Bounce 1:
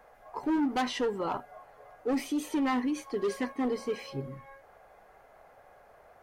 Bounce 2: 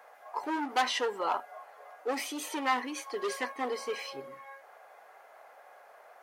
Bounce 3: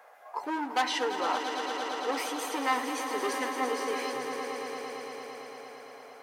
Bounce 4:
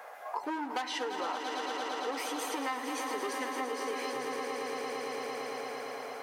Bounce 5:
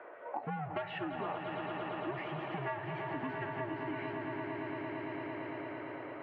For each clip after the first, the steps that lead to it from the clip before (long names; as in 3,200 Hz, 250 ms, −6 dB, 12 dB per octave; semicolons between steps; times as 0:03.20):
high-pass filter 640 Hz 12 dB per octave; level +4.5 dB
echo that builds up and dies away 113 ms, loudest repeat 5, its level −10.5 dB
downward compressor 5 to 1, threshold −41 dBFS, peak gain reduction 17 dB; level +7.5 dB
single-sideband voice off tune −140 Hz 220–2,900 Hz; level −3 dB